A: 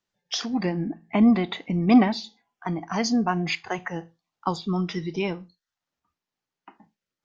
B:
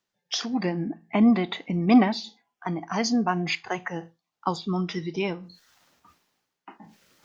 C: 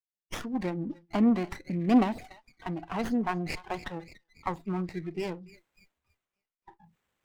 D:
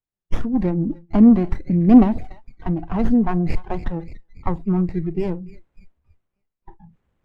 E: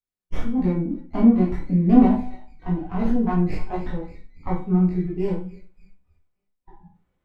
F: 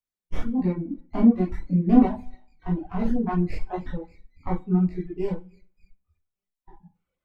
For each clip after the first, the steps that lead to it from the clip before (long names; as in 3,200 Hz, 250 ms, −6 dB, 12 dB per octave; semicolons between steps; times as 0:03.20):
low-shelf EQ 71 Hz −11.5 dB; reversed playback; upward compression, threshold −39 dBFS; reversed playback
feedback echo with a band-pass in the loop 289 ms, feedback 71%, band-pass 2,800 Hz, level −12 dB; noise reduction from a noise print of the clip's start 25 dB; windowed peak hold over 9 samples; level −4.5 dB
spectral tilt −4 dB per octave; level +3.5 dB
tuned comb filter 250 Hz, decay 0.46 s, harmonics all, mix 70%; convolution reverb RT60 0.35 s, pre-delay 7 ms, DRR −5.5 dB
reverb reduction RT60 1.2 s; level −1.5 dB